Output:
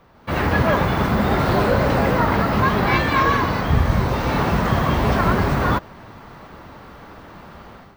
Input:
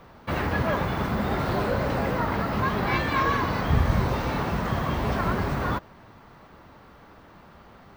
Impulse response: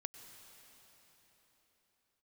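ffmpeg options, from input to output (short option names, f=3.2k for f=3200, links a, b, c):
-af "dynaudnorm=f=120:g=5:m=13dB,volume=-3.5dB"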